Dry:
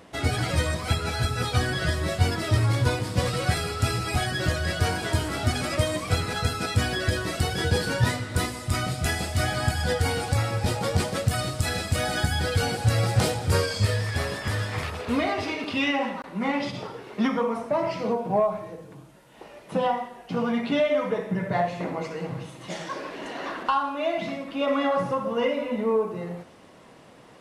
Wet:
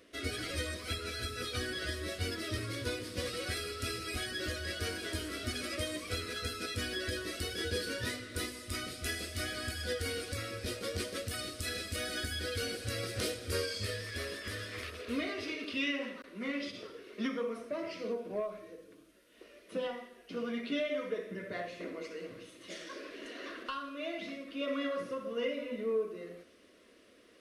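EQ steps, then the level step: low shelf 270 Hz -5 dB; bell 7400 Hz -6 dB 0.26 oct; fixed phaser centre 350 Hz, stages 4; -6.0 dB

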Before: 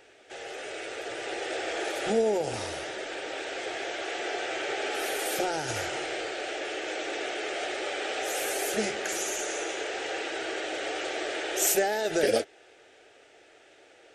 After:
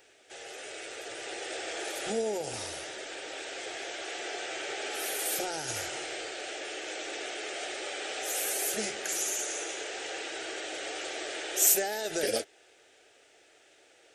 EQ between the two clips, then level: high shelf 3400 Hz +8 dB; high shelf 8800 Hz +5.5 dB; -6.5 dB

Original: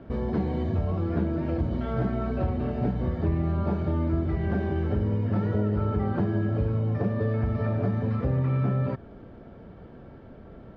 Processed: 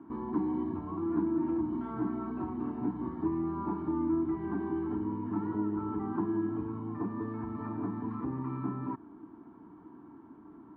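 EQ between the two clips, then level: double band-pass 550 Hz, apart 1.7 oct; +6.0 dB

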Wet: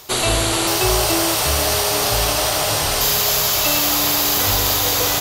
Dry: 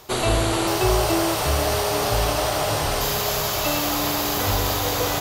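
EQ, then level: high shelf 2100 Hz +9.5 dB; 0.0 dB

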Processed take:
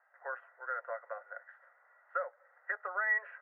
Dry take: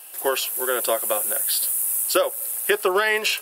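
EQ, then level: inverse Chebyshev high-pass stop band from 300 Hz, stop band 40 dB; rippled Chebyshev low-pass 2000 Hz, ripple 9 dB; tilt +4.5 dB/oct; -8.5 dB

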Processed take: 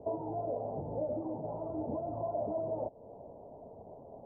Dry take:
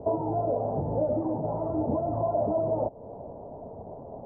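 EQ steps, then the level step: Bessel low-pass 720 Hz, order 2; low shelf 360 Hz -8 dB; -4.0 dB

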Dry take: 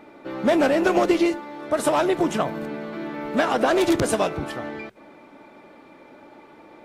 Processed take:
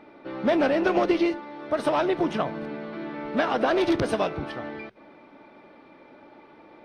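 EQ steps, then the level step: polynomial smoothing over 15 samples; -3.0 dB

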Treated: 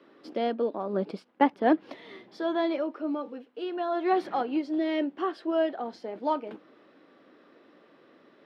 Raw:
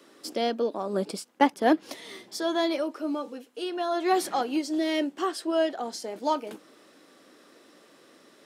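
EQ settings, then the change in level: air absorption 350 m; 0.0 dB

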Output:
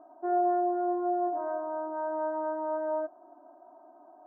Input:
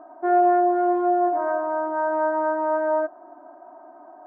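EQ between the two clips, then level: LPF 1100 Hz 12 dB/oct; -8.0 dB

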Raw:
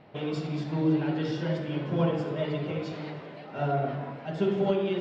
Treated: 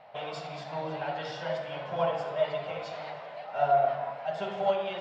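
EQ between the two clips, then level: resonant low shelf 470 Hz -12 dB, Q 3; 0.0 dB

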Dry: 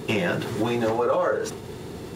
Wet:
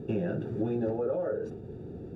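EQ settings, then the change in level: running mean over 42 samples; -3.5 dB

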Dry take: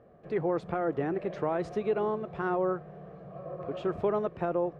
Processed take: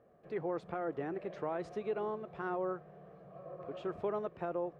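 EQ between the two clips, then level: low shelf 200 Hz -6 dB; -6.5 dB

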